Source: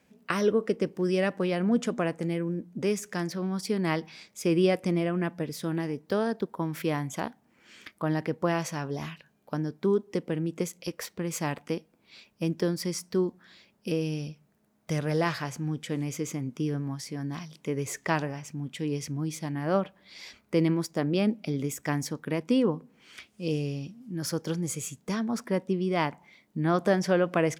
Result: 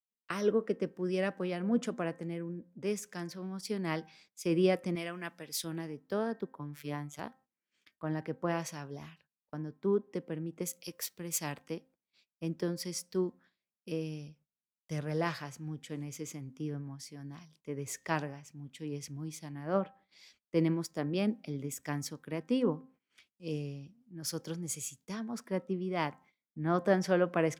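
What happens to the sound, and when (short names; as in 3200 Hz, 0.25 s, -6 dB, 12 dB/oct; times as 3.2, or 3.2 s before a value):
4.95–5.64 tilt shelf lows -7.5 dB, about 740 Hz
6.59–7.19 robotiser 146 Hz
10.62–11.38 high shelf 9100 Hz +9 dB
whole clip: de-hum 262.3 Hz, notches 7; gate -51 dBFS, range -17 dB; three-band expander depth 70%; gain -7 dB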